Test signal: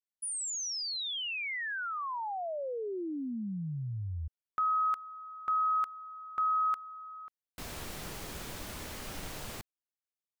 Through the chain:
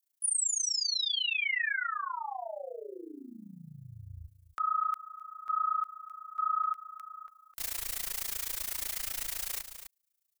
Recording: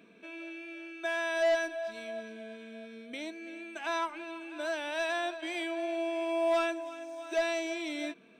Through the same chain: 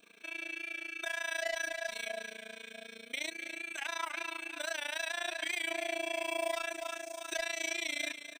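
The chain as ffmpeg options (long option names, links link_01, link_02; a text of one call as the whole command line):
ffmpeg -i in.wav -filter_complex "[0:a]asplit=2[link_01][link_02];[link_02]acompressor=threshold=-37dB:ratio=6:attack=67:release=36:knee=1:detection=rms,volume=-1.5dB[link_03];[link_01][link_03]amix=inputs=2:normalize=0,equalizer=frequency=170:width=0.38:gain=-14,aecho=1:1:257:0.2,crystalizer=i=3:c=0,adynamicequalizer=threshold=0.00447:dfrequency=2000:dqfactor=3.4:tfrequency=2000:tqfactor=3.4:attack=5:release=100:ratio=0.375:range=3:mode=boostabove:tftype=bell,alimiter=limit=-22.5dB:level=0:latency=1:release=51,tremolo=f=28:d=0.919" out.wav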